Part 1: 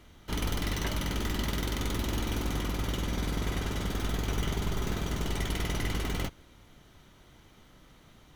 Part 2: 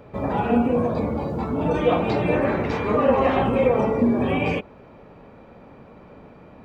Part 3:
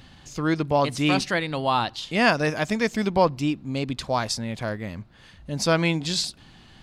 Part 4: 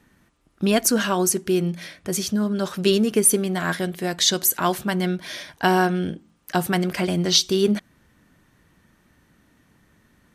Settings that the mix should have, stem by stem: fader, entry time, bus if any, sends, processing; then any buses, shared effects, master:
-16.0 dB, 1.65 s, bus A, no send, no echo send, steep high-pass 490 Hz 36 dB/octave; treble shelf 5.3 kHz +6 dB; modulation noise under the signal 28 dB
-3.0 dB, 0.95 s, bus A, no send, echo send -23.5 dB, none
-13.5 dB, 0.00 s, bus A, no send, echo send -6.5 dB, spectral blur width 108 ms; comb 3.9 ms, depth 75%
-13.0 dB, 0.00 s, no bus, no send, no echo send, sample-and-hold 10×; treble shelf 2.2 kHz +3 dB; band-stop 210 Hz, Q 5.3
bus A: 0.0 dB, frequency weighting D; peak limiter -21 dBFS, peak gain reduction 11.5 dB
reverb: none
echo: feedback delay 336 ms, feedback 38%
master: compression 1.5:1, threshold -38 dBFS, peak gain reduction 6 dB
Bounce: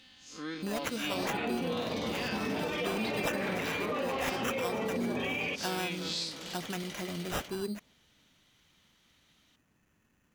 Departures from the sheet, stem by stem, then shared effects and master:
stem 1: entry 1.65 s -> 1.20 s; stem 4: missing band-stop 210 Hz, Q 5.3

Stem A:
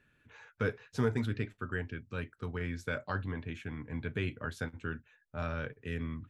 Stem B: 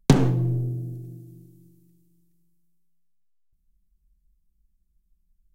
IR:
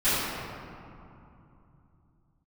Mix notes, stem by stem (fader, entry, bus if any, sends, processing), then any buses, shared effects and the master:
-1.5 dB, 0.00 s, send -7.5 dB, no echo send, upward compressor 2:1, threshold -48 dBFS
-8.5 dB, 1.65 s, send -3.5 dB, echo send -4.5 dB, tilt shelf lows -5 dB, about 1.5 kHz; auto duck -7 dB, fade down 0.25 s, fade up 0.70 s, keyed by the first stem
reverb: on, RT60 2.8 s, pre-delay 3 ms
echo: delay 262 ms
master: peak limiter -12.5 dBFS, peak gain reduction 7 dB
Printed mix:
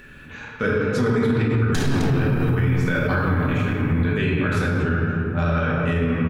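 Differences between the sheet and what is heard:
stem A -1.5 dB -> +8.5 dB; stem B -8.5 dB -> -1.5 dB

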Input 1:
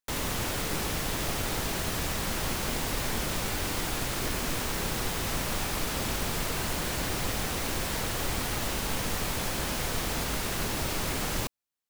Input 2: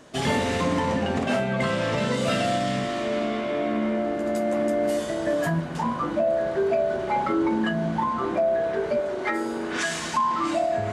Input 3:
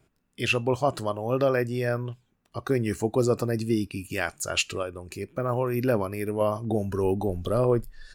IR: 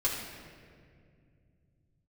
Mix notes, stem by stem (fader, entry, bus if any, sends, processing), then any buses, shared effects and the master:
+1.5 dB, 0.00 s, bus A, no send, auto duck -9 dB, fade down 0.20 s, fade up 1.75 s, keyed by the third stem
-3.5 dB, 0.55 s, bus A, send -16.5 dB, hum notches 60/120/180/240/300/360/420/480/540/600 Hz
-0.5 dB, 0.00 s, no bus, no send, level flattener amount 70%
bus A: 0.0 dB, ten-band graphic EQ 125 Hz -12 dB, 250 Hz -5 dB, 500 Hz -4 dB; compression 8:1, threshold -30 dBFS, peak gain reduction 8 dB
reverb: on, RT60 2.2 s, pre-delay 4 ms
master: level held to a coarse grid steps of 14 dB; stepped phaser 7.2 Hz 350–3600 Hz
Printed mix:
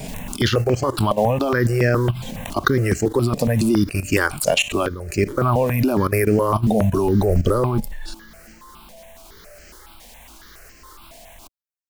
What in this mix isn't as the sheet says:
stem 2 -3.5 dB -> -11.0 dB; stem 3 -0.5 dB -> +9.5 dB

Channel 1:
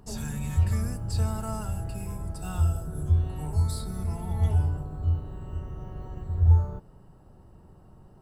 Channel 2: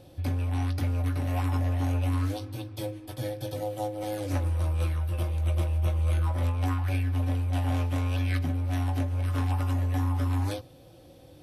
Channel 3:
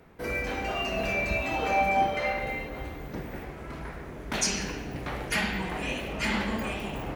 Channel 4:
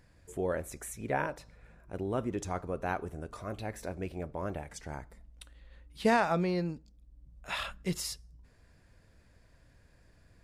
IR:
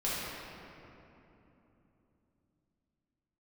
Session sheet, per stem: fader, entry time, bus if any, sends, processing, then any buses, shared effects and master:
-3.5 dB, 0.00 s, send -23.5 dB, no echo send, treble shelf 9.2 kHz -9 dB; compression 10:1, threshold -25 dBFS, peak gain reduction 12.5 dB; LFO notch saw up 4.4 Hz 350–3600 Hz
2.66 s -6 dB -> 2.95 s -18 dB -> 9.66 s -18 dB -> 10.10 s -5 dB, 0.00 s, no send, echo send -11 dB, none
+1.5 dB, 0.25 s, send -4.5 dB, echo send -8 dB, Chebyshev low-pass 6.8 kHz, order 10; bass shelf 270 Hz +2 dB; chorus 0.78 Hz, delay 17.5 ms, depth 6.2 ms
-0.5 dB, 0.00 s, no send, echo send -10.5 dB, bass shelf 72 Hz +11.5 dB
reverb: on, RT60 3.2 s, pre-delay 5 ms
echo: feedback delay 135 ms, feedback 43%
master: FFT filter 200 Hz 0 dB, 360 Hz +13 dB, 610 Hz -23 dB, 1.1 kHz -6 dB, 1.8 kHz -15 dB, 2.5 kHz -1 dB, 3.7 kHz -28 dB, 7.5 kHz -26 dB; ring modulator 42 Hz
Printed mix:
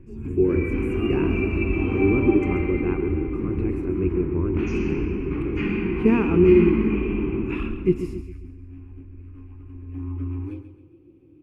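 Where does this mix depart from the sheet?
stem 4 -0.5 dB -> +7.0 dB; master: missing ring modulator 42 Hz

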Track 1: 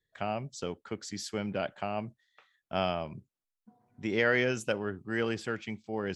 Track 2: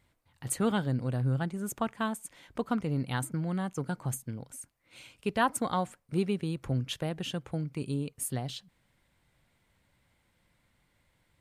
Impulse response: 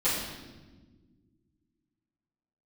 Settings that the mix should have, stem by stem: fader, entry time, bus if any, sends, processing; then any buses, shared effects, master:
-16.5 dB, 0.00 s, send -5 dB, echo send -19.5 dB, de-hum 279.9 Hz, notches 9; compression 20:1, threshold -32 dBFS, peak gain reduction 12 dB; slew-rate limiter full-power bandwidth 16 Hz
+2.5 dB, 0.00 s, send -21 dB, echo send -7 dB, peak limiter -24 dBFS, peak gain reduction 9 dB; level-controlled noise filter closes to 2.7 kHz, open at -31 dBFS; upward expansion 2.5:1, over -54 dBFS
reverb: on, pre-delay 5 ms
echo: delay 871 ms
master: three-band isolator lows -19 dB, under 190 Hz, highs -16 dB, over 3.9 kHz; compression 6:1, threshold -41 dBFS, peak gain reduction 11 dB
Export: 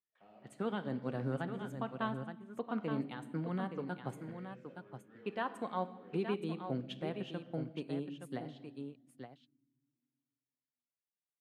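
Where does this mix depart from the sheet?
stem 1 -16.5 dB -> -27.5 dB; master: missing compression 6:1, threshold -41 dBFS, peak gain reduction 11 dB

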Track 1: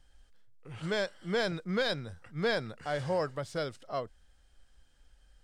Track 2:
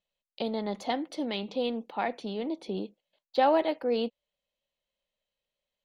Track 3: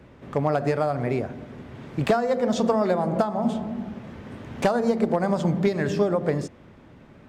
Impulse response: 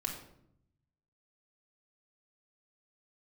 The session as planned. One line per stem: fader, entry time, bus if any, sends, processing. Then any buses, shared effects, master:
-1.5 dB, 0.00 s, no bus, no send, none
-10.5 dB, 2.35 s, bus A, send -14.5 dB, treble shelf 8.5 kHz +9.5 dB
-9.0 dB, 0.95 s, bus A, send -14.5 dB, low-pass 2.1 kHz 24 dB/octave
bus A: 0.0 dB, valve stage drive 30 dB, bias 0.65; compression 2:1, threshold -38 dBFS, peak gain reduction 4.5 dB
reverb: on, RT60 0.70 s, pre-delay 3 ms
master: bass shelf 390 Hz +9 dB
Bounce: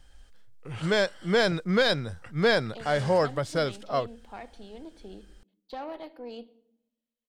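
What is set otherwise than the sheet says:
stem 1 -1.5 dB -> +7.5 dB; stem 3: muted; master: missing bass shelf 390 Hz +9 dB

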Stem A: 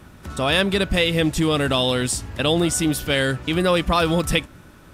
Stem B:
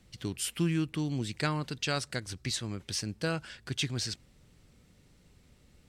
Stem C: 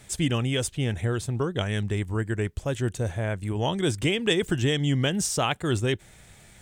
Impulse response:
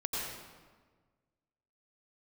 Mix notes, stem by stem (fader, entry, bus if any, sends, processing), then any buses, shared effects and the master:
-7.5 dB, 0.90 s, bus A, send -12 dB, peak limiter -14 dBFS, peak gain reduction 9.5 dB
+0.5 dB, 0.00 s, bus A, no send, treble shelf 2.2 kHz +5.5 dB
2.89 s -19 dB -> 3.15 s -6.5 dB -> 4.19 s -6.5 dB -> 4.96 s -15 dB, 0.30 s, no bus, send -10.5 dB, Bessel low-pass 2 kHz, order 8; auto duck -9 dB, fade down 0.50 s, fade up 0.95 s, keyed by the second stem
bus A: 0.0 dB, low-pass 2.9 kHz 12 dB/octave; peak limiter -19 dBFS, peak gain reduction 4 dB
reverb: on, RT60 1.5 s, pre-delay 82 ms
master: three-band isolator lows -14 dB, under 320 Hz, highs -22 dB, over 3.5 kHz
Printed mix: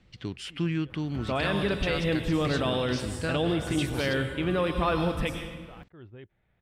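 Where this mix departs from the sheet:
stem A: missing peak limiter -14 dBFS, peak gain reduction 9.5 dB; stem C: send off; master: missing three-band isolator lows -14 dB, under 320 Hz, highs -22 dB, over 3.5 kHz

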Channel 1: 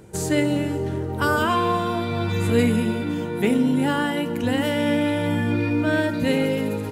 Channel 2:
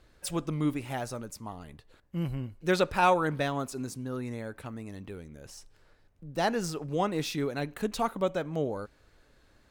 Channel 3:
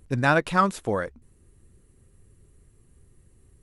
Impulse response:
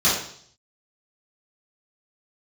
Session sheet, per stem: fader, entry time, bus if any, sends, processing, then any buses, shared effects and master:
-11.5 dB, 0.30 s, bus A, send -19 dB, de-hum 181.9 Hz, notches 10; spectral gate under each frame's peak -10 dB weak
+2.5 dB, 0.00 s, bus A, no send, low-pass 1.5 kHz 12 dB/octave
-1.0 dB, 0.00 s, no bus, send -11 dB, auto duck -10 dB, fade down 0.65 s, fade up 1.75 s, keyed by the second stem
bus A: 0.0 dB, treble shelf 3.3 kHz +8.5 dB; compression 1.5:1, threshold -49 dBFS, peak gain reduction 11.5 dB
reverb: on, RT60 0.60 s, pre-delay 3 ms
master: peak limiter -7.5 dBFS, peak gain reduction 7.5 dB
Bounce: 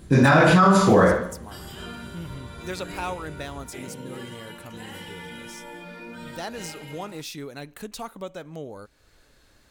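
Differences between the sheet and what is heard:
stem 2: missing low-pass 1.5 kHz 12 dB/octave; stem 3 -1.0 dB -> +7.0 dB

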